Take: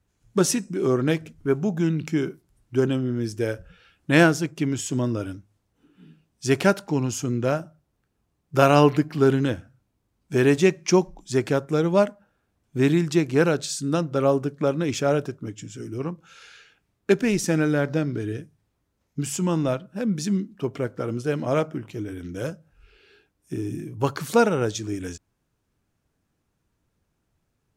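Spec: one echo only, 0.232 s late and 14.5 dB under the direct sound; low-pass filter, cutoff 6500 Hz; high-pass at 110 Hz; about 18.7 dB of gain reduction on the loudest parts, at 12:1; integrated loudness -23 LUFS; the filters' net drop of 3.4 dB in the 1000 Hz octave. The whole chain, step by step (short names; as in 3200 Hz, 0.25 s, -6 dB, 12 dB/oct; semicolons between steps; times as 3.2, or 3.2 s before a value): HPF 110 Hz; LPF 6500 Hz; bell 1000 Hz -5 dB; compressor 12:1, threshold -32 dBFS; echo 0.232 s -14.5 dB; gain +15 dB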